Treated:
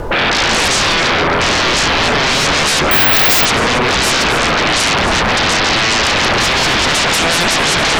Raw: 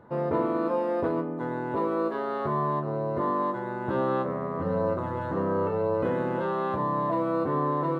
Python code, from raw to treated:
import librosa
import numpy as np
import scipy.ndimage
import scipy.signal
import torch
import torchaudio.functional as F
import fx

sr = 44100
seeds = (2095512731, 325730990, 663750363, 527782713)

p1 = fx.tracing_dist(x, sr, depth_ms=0.074)
p2 = fx.curve_eq(p1, sr, hz=(110.0, 170.0, 400.0, 2400.0), db=(0, -23, 2, -4))
p3 = fx.rider(p2, sr, range_db=10, speed_s=0.5)
p4 = p2 + (p3 * librosa.db_to_amplitude(-0.5))
p5 = fx.dmg_noise_colour(p4, sr, seeds[0], colour='brown', level_db=-47.0)
p6 = fx.rotary_switch(p5, sr, hz=1.1, then_hz=5.5, switch_at_s=2.15)
p7 = fx.fold_sine(p6, sr, drive_db=17, ceiling_db=-17.0)
p8 = p7 + fx.echo_single(p7, sr, ms=270, db=-10.0, dry=0)
p9 = fx.resample_bad(p8, sr, factor=2, down='none', up='zero_stuff', at=(2.91, 3.46))
p10 = fx.record_warp(p9, sr, rpm=45.0, depth_cents=100.0)
y = p10 * librosa.db_to_amplitude(6.5)